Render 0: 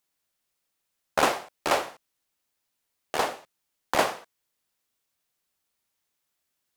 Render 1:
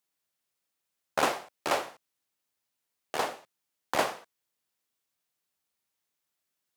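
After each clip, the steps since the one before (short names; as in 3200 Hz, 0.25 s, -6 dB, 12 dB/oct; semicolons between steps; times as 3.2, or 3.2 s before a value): HPF 75 Hz; gain -4 dB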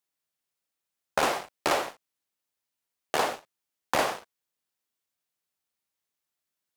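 sample leveller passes 2; compressor 4:1, threshold -23 dBFS, peak gain reduction 6.5 dB; gain +1 dB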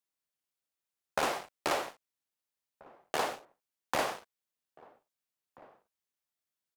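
outdoor echo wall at 280 m, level -22 dB; gain -5.5 dB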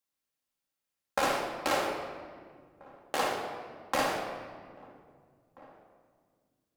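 reverb RT60 1.9 s, pre-delay 4 ms, DRR -0.5 dB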